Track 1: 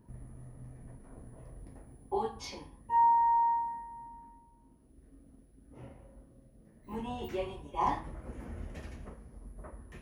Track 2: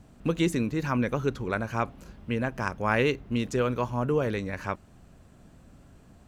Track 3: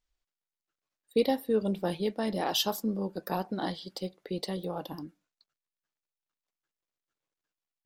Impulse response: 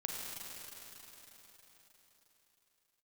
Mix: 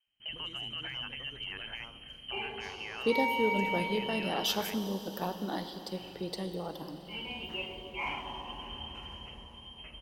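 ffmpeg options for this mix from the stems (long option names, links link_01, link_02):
-filter_complex "[0:a]asoftclip=type=hard:threshold=-25dB,adelay=200,volume=-4dB,asplit=2[link_01][link_02];[link_02]volume=-4dB[link_03];[1:a]equalizer=frequency=170:width=0.35:gain=-5,acompressor=threshold=-34dB:ratio=10,agate=range=-25dB:threshold=-51dB:ratio=16:detection=peak,volume=-1dB,asplit=2[link_04][link_05];[link_05]volume=-15dB[link_06];[2:a]adelay=1900,volume=-6.5dB,asplit=2[link_07][link_08];[link_08]volume=-4.5dB[link_09];[link_01][link_04]amix=inputs=2:normalize=0,lowpass=frequency=2700:width_type=q:width=0.5098,lowpass=frequency=2700:width_type=q:width=0.6013,lowpass=frequency=2700:width_type=q:width=0.9,lowpass=frequency=2700:width_type=q:width=2.563,afreqshift=-3200,alimiter=level_in=6.5dB:limit=-24dB:level=0:latency=1:release=22,volume=-6.5dB,volume=0dB[link_10];[3:a]atrim=start_sample=2205[link_11];[link_03][link_09]amix=inputs=2:normalize=0[link_12];[link_12][link_11]afir=irnorm=-1:irlink=0[link_13];[link_06]aecho=0:1:73|146|219|292|365|438:1|0.4|0.16|0.064|0.0256|0.0102[link_14];[link_07][link_10][link_13][link_14]amix=inputs=4:normalize=0"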